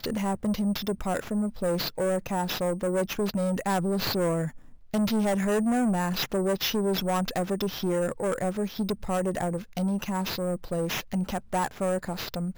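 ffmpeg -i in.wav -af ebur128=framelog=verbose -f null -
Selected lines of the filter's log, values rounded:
Integrated loudness:
  I:         -28.1 LUFS
  Threshold: -38.2 LUFS
Loudness range:
  LRA:         3.1 LU
  Threshold: -47.9 LUFS
  LRA low:   -29.7 LUFS
  LRA high:  -26.6 LUFS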